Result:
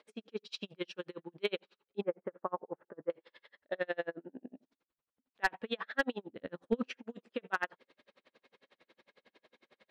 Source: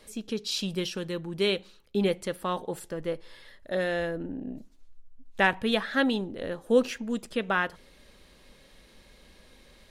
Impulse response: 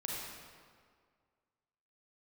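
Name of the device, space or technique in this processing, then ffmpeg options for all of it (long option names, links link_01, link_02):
helicopter radio: -filter_complex "[0:a]highpass=330,lowpass=2900,aeval=exprs='val(0)*pow(10,-39*(0.5-0.5*cos(2*PI*11*n/s))/20)':channel_layout=same,asoftclip=type=hard:threshold=-19dB,asettb=1/sr,asplit=3[link_01][link_02][link_03];[link_01]atrim=end=2.014[link_04];[link_02]atrim=start=2.01:end=3.1,asetpts=PTS-STARTPTS,afade=type=in:duration=0.004:curve=qsin,afade=type=out:start_time=1.086:duration=0.004:curve=qsin,lowpass=frequency=1500:width=0.5412,lowpass=frequency=1500:width=1.3066[link_05];[link_03]atrim=start=3.096[link_06];[link_04][link_05]acrossfade=duration=0.004:curve1=hsin:curve2=qsin[link_07];[link_07][link_06]acrossfade=duration=0.004:curve1=qsin:curve2=hsin,asplit=3[link_08][link_09][link_10];[link_08]afade=type=out:start_time=6.28:duration=0.02[link_11];[link_09]asubboost=boost=5:cutoff=210,afade=type=in:start_time=6.28:duration=0.02,afade=type=out:start_time=6.88:duration=0.02[link_12];[link_10]afade=type=in:start_time=6.88:duration=0.02[link_13];[link_11][link_12][link_13]amix=inputs=3:normalize=0"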